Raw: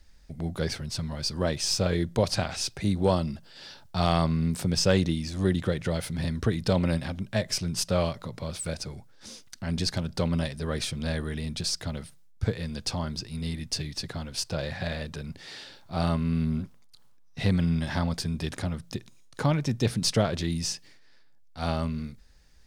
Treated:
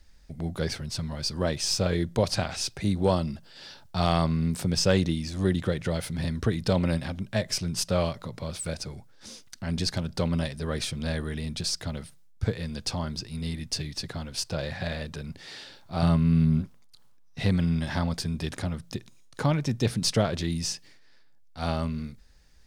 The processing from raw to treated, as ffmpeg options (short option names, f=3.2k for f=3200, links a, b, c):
-filter_complex "[0:a]asettb=1/sr,asplit=3[a][b][c];[a]atrim=end=16.024[d];[b]atrim=start=16.02:end=16.62,asetpts=PTS-STARTPTS,afade=t=in:d=0.004:c=qsin,afade=t=out:st=0.596:d=0.004:c=qsin,equalizer=f=130:t=o:w=0.81:g=11[e];[c]atrim=start=16.616[f];[d][e]acrossfade=d=0.004:c1=hsin:c2=qsin[g];[g][f]acrossfade=d=0.004:c1=qsin:c2=hsin"